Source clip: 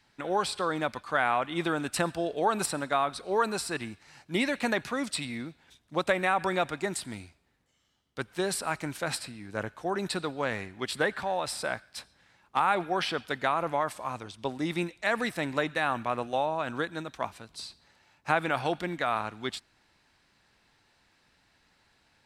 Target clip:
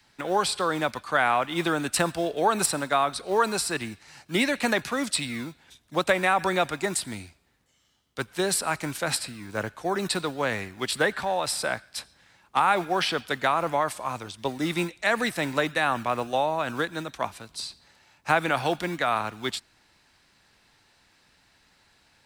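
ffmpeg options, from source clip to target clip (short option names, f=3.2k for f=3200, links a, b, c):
-filter_complex "[0:a]acrossover=split=220|590|5700[a][b][c][d];[a]acrusher=samples=29:mix=1:aa=0.000001:lfo=1:lforange=17.4:lforate=1.5[e];[e][b][c][d]amix=inputs=4:normalize=0,highshelf=f=4.3k:g=5,volume=3.5dB"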